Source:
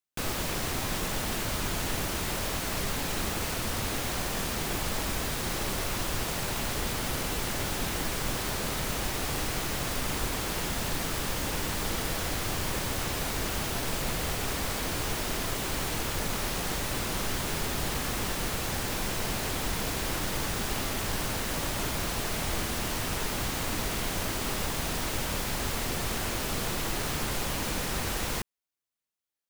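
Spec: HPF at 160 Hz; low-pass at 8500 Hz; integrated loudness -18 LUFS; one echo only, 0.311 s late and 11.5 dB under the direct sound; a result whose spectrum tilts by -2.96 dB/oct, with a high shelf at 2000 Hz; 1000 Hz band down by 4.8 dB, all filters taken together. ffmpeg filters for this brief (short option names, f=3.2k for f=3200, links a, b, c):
-af "highpass=160,lowpass=8.5k,equalizer=f=1k:t=o:g=-7.5,highshelf=f=2k:g=4,aecho=1:1:311:0.266,volume=13dB"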